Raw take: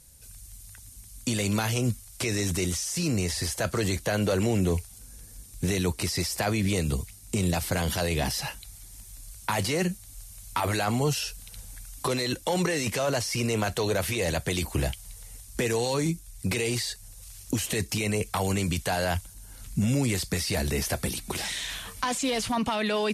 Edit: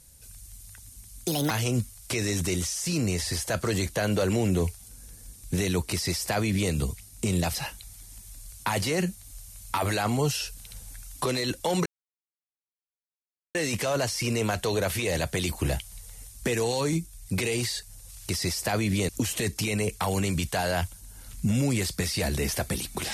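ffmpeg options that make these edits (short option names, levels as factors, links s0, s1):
-filter_complex "[0:a]asplit=7[s0][s1][s2][s3][s4][s5][s6];[s0]atrim=end=1.274[s7];[s1]atrim=start=1.27:end=1.61,asetpts=PTS-STARTPTS,asetrate=63063,aresample=44100,atrim=end_sample=10485,asetpts=PTS-STARTPTS[s8];[s2]atrim=start=1.606:end=7.652[s9];[s3]atrim=start=8.368:end=12.68,asetpts=PTS-STARTPTS,afade=t=out:st=4.308:d=0.004:c=hsin,apad=pad_dur=1.69[s10];[s4]atrim=start=12.68:end=17.422,asetpts=PTS-STARTPTS,afade=t=in:d=0.004:c=hsin[s11];[s5]atrim=start=6.018:end=6.822[s12];[s6]atrim=start=17.418[s13];[s7][s8]acrossfade=d=0.004:c1=hsin:c2=hsin[s14];[s14][s9]acrossfade=d=0.004:c1=hsin:c2=hsin[s15];[s10][s11]concat=n=2:v=0:a=1[s16];[s15][s16]acrossfade=d=0.004:c1=hsin:c2=hsin[s17];[s17][s12]acrossfade=d=0.004:c1=hsin:c2=hsin[s18];[s18][s13]acrossfade=d=0.004:c1=hsin:c2=hsin"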